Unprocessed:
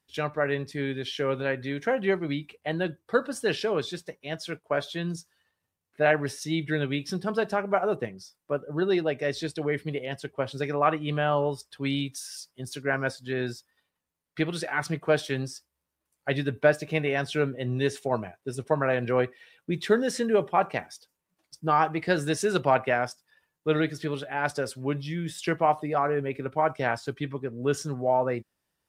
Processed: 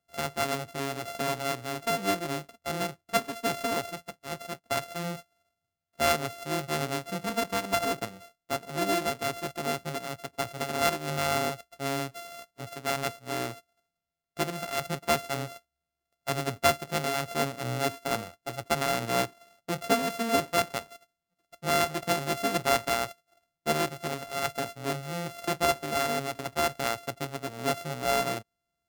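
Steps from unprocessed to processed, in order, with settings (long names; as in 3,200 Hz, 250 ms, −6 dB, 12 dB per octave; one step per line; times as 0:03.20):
samples sorted by size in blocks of 64 samples
level −3 dB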